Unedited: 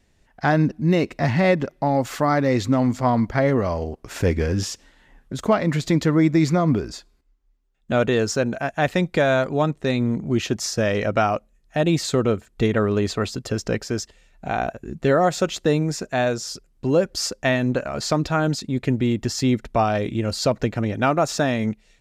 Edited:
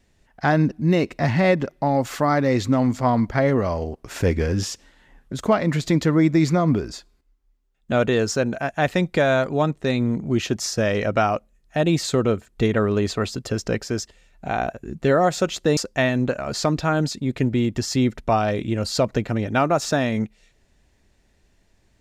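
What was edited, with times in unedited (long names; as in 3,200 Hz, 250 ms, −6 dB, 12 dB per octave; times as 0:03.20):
0:15.77–0:17.24: remove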